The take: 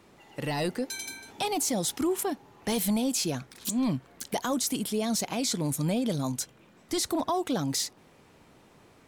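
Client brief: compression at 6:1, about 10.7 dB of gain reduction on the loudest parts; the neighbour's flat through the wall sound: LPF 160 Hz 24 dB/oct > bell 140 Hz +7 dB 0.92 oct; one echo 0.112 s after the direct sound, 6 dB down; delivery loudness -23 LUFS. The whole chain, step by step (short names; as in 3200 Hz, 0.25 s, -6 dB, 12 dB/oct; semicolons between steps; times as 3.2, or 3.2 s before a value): compressor 6:1, threshold -36 dBFS; LPF 160 Hz 24 dB/oct; bell 140 Hz +7 dB 0.92 oct; echo 0.112 s -6 dB; gain +21 dB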